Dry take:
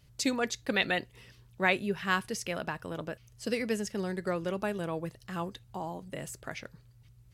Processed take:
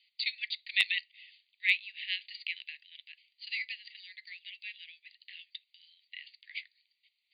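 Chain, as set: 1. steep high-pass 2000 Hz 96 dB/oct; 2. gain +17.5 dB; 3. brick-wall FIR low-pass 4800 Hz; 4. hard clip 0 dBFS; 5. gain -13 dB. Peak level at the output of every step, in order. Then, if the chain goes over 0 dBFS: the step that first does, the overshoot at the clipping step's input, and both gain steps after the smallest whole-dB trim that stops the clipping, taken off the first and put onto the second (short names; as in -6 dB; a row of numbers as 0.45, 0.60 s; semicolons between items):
-13.5, +4.0, +4.0, 0.0, -13.0 dBFS; step 2, 4.0 dB; step 2 +13.5 dB, step 5 -9 dB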